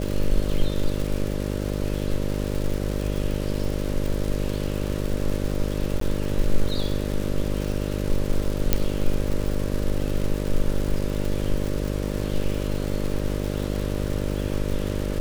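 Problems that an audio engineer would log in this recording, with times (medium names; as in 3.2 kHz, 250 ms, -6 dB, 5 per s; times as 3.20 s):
buzz 50 Hz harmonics 12 -27 dBFS
crackle 230 per s -28 dBFS
6.00–6.01 s: dropout 13 ms
8.73 s: pop -4 dBFS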